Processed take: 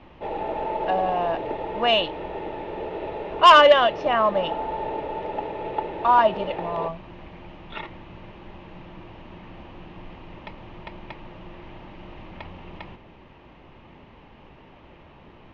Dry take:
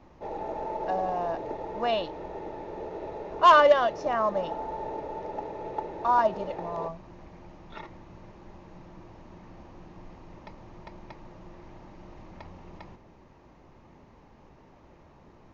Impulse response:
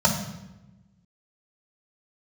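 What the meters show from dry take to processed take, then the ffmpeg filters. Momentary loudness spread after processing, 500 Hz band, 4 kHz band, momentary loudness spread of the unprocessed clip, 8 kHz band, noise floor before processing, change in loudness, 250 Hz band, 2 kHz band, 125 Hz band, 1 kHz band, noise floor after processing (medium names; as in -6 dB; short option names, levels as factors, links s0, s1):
23 LU, +5.0 dB, +13.0 dB, 19 LU, no reading, -55 dBFS, +5.5 dB, +5.0 dB, +7.0 dB, +5.0 dB, +5.0 dB, -49 dBFS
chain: -af "lowpass=f=3000:t=q:w=3.3,acontrast=72,volume=0.841"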